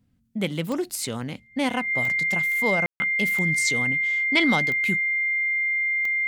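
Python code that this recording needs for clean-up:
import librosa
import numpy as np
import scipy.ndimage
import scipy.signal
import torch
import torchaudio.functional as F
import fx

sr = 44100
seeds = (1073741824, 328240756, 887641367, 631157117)

y = fx.fix_declick_ar(x, sr, threshold=10.0)
y = fx.notch(y, sr, hz=2100.0, q=30.0)
y = fx.fix_ambience(y, sr, seeds[0], print_start_s=0.0, print_end_s=0.5, start_s=2.86, end_s=3.0)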